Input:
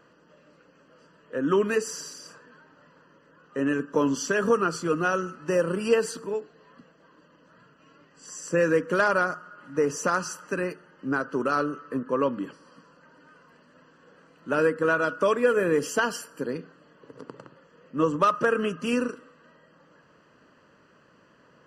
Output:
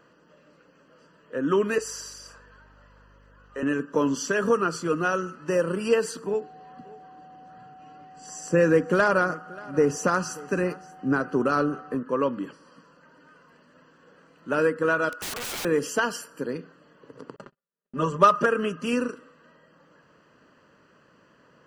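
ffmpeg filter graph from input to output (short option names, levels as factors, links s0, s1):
-filter_complex "[0:a]asettb=1/sr,asplit=3[s0][s1][s2];[s0]atrim=end=1.784[s3];[s1]atrim=start=1.78:end=3.63,asetpts=PTS-STARTPTS,afade=t=in:d=0.004:c=qsin,afade=t=out:st=1.846:d=0.004:c=qsin,highpass=460,aeval=exprs='val(0)+0.00178*(sin(2*PI*50*n/s)+sin(2*PI*2*50*n/s)/2+sin(2*PI*3*50*n/s)/3+sin(2*PI*4*50*n/s)/4+sin(2*PI*5*50*n/s)/5)':c=same[s4];[s2]atrim=start=3.626[s5];[s3][s4]acrossfade=d=0.004:c1=hsin:c2=qsin[s6];[s6][s5]acrossfade=d=0.004:c1=qsin:c2=hsin,asettb=1/sr,asplit=3[s7][s8][s9];[s7]atrim=end=6.264[s10];[s8]atrim=start=6.26:end=11.95,asetpts=PTS-STARTPTS,afade=t=in:d=0.004:c=qsin,afade=t=out:st=5.686:d=0.004:c=qsin,lowshelf=f=360:g=7,aeval=exprs='val(0)+0.00562*sin(2*PI*750*n/s)':c=same,aecho=1:1:582:0.0841,atrim=end_sample=250929[s11];[s9]atrim=start=11.946[s12];[s10][s11]acrossfade=d=0.004:c1=hsin:c2=qsin[s13];[s13][s12]acrossfade=d=0.004:c1=qsin:c2=hsin,asettb=1/sr,asplit=3[s14][s15][s16];[s14]atrim=end=15.094[s17];[s15]atrim=start=15.09:end=15.65,asetpts=PTS-STARTPTS,afade=t=in:d=0.004:c=qsin,afade=t=out:st=0.556:d=0.004:c=qsin,highpass=420,aeval=exprs='(mod(25.1*val(0)+1,2)-1)/25.1':c=same[s18];[s16]atrim=start=15.646[s19];[s17][s18]acrossfade=d=0.004:c1=hsin:c2=qsin[s20];[s20][s19]acrossfade=d=0.004:c1=qsin:c2=hsin,asettb=1/sr,asplit=3[s21][s22][s23];[s21]atrim=end=17.364[s24];[s22]atrim=start=17.36:end=18.46,asetpts=PTS-STARTPTS,afade=t=in:d=0.004:c=qsin,afade=t=out:st=1.096:d=0.004:c=qsin,agate=range=0.00708:threshold=0.00316:ratio=16:release=100:detection=peak,aecho=1:1:5:0.96,atrim=end_sample=48510[s25];[s23]atrim=start=18.456[s26];[s24][s25]acrossfade=d=0.004:c1=hsin:c2=qsin[s27];[s27][s26]acrossfade=d=0.004:c1=qsin:c2=hsin"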